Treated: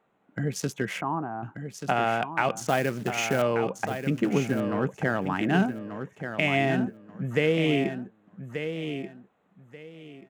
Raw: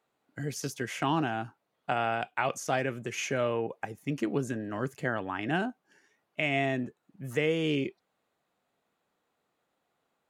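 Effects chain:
adaptive Wiener filter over 9 samples
parametric band 190 Hz +10 dB 0.25 octaves
in parallel at 0 dB: downward compressor, threshold −39 dBFS, peak gain reduction 16.5 dB
0:01.01–0:01.43: on the sum: transistor ladder low-pass 1,300 Hz, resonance 45%
0:02.58–0:03.42: floating-point word with a short mantissa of 2 bits
on a send: repeating echo 1,184 ms, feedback 22%, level −8.5 dB
on the sum: level +2.5 dB

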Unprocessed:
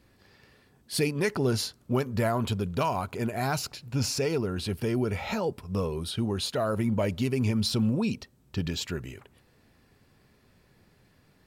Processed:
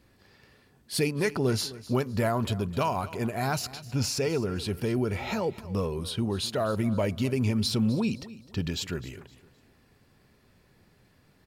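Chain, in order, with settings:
repeating echo 257 ms, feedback 32%, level −18 dB

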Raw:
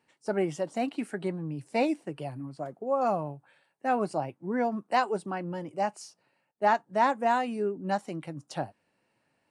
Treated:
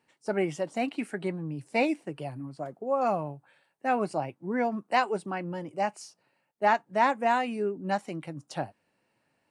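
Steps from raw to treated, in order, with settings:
dynamic equaliser 2,300 Hz, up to +6 dB, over −50 dBFS, Q 2.1

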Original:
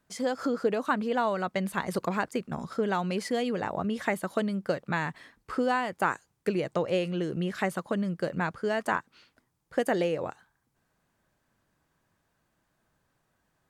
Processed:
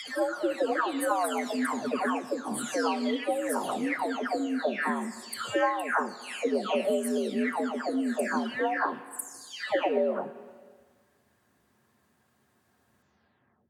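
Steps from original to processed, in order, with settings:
every frequency bin delayed by itself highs early, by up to 668 ms
four-comb reverb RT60 1.5 s, combs from 29 ms, DRR 15 dB
in parallel at +1 dB: downward compressor, threshold −42 dBFS, peak gain reduction 18 dB
on the sum: dynamic equaliser 9,400 Hz, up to +7 dB, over −59 dBFS, Q 0.93
frequency shifter +65 Hz

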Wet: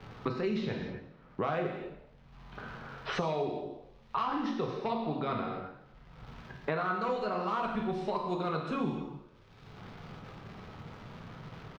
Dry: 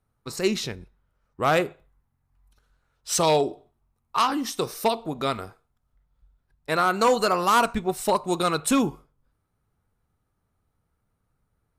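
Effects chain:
low-pass that shuts in the quiet parts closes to 2,200 Hz, open at −17.5 dBFS
reversed playback
downward compressor, threshold −29 dBFS, peak gain reduction 12.5 dB
reversed playback
surface crackle 280 per second −62 dBFS
high-frequency loss of the air 270 metres
on a send: echo with shifted repeats 115 ms, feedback 31%, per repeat +39 Hz, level −19.5 dB
on the sum: reverb whose tail is shaped and stops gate 300 ms falling, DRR 0 dB
multiband upward and downward compressor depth 100%
level −2.5 dB

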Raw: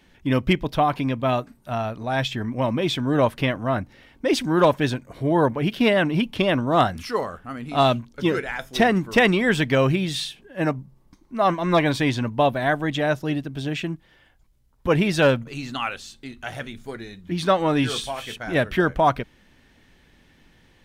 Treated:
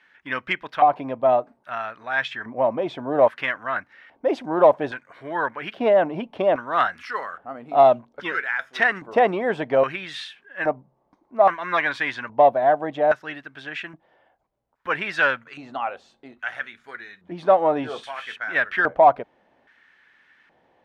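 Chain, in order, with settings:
auto-filter band-pass square 0.61 Hz 690–1,600 Hz
in parallel at −10 dB: soft clipping −17.5 dBFS, distortion −15 dB
on the sum: level +5 dB

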